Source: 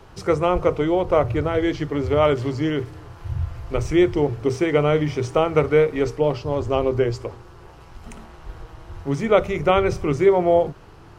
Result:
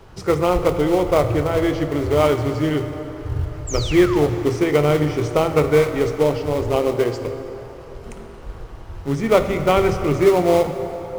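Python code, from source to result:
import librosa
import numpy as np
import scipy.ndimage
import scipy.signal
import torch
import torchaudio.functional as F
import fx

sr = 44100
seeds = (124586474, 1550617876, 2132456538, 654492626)

p1 = fx.highpass(x, sr, hz=170.0, slope=12, at=(6.76, 7.23))
p2 = fx.sample_hold(p1, sr, seeds[0], rate_hz=1600.0, jitter_pct=20)
p3 = p1 + F.gain(torch.from_numpy(p2), -11.0).numpy()
p4 = fx.spec_paint(p3, sr, seeds[1], shape='fall', start_s=3.67, length_s=0.61, low_hz=530.0, high_hz=7900.0, level_db=-31.0)
y = fx.rev_plate(p4, sr, seeds[2], rt60_s=4.0, hf_ratio=0.6, predelay_ms=0, drr_db=7.5)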